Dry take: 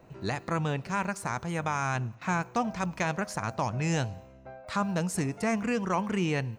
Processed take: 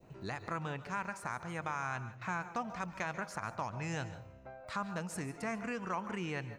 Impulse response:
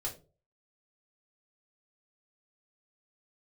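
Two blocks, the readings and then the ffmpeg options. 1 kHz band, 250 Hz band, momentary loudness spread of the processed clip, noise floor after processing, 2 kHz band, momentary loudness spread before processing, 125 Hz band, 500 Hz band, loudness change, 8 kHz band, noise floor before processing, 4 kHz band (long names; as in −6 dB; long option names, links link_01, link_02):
−7.0 dB, −11.0 dB, 4 LU, −54 dBFS, −6.0 dB, 6 LU, −11.0 dB, −9.5 dB, −9.0 dB, −10.5 dB, −52 dBFS, −9.0 dB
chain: -filter_complex "[0:a]adynamicequalizer=threshold=0.00708:dfrequency=1400:dqfactor=0.8:tfrequency=1400:tqfactor=0.8:attack=5:release=100:ratio=0.375:range=3.5:mode=boostabove:tftype=bell,acompressor=threshold=-45dB:ratio=1.5,asplit=2[link_01][link_02];[1:a]atrim=start_sample=2205,adelay=137[link_03];[link_02][link_03]afir=irnorm=-1:irlink=0,volume=-14dB[link_04];[link_01][link_04]amix=inputs=2:normalize=0,volume=-4dB"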